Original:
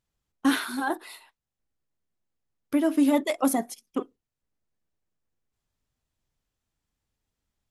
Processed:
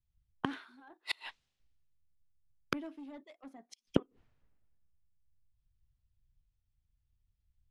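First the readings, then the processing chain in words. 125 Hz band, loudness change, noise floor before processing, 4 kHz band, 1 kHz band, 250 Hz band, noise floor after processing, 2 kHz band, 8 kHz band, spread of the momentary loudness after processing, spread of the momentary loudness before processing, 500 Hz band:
n/a, -13.5 dB, under -85 dBFS, -7.0 dB, -14.0 dB, -15.5 dB, -83 dBFS, -10.0 dB, -21.5 dB, 19 LU, 12 LU, -13.0 dB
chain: LPF 3400 Hz 12 dB/oct; sine folder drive 4 dB, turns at -11 dBFS; high shelf 2400 Hz +4.5 dB; flipped gate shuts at -26 dBFS, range -37 dB; three-band expander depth 100%; gain +3.5 dB

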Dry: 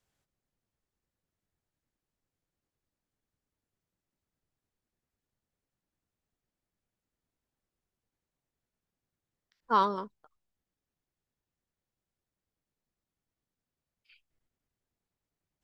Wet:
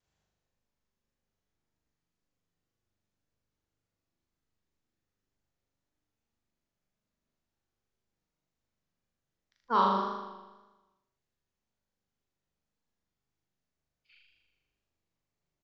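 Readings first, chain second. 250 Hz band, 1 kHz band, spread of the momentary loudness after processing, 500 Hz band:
+2.5 dB, +1.0 dB, 17 LU, 0.0 dB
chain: downsampling 16000 Hz; flutter echo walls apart 6.9 m, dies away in 1.2 s; vibrato 1.9 Hz 36 cents; gain -3 dB

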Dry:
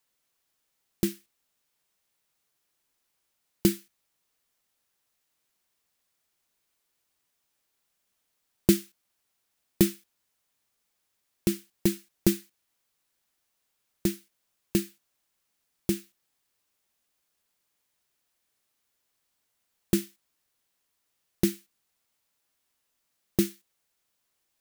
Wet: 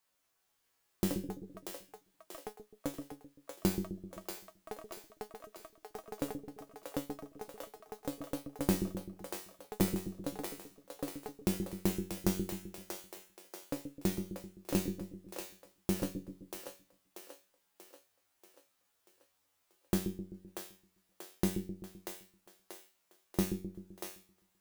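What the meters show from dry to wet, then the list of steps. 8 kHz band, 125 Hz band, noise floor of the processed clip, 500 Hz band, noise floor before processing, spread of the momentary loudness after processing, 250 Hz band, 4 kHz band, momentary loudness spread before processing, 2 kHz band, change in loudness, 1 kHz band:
-5.5 dB, -3.5 dB, -78 dBFS, -4.5 dB, -78 dBFS, 17 LU, -5.5 dB, -5.5 dB, 10 LU, -3.0 dB, -10.0 dB, +7.5 dB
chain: bell 900 Hz +4.5 dB 1.9 oct; compressor 3:1, threshold -25 dBFS, peak gain reduction 9 dB; resonator 94 Hz, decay 0.35 s, harmonics all, mix 90%; echoes that change speed 0.421 s, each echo +7 st, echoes 3, each echo -6 dB; on a send: split-band echo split 430 Hz, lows 0.129 s, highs 0.636 s, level -5.5 dB; on the sum: gain +7 dB

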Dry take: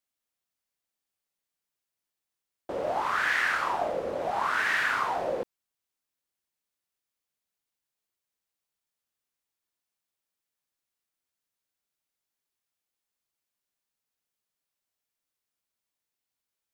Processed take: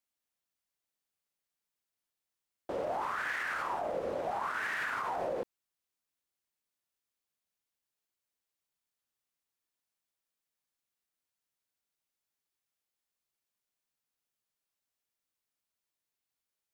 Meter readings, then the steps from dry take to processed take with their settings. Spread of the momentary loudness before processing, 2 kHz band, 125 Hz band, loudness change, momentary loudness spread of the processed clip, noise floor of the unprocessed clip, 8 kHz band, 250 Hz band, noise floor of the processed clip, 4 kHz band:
9 LU, -8.5 dB, -4.5 dB, -7.5 dB, 6 LU, under -85 dBFS, -8.5 dB, -4.0 dB, under -85 dBFS, -11.0 dB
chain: dynamic EQ 3900 Hz, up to -5 dB, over -43 dBFS, Q 0.78; limiter -24 dBFS, peak gain reduction 8 dB; gain -2.5 dB

